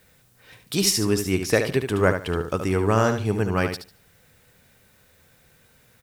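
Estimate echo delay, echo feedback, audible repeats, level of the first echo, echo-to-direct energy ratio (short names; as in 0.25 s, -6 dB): 73 ms, 20%, 2, -8.0 dB, -8.0 dB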